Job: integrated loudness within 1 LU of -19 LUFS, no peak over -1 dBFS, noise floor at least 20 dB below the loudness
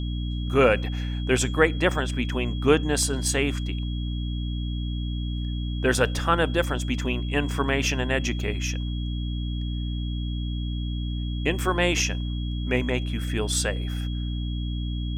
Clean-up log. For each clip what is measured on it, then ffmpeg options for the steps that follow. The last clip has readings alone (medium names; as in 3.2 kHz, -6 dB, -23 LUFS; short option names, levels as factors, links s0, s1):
hum 60 Hz; highest harmonic 300 Hz; hum level -26 dBFS; steady tone 3.3 kHz; tone level -41 dBFS; loudness -26.0 LUFS; peak level -5.5 dBFS; loudness target -19.0 LUFS
-> -af "bandreject=f=60:t=h:w=6,bandreject=f=120:t=h:w=6,bandreject=f=180:t=h:w=6,bandreject=f=240:t=h:w=6,bandreject=f=300:t=h:w=6"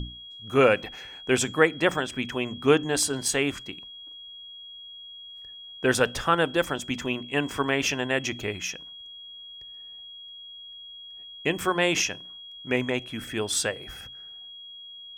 hum not found; steady tone 3.3 kHz; tone level -41 dBFS
-> -af "bandreject=f=3300:w=30"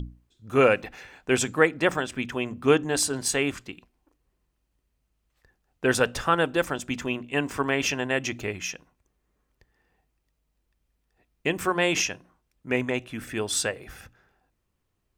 steady tone not found; loudness -25.5 LUFS; peak level -6.0 dBFS; loudness target -19.0 LUFS
-> -af "volume=2.11,alimiter=limit=0.891:level=0:latency=1"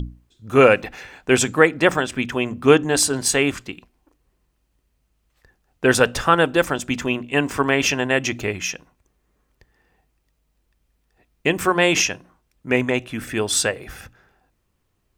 loudness -19.5 LUFS; peak level -1.0 dBFS; noise floor -70 dBFS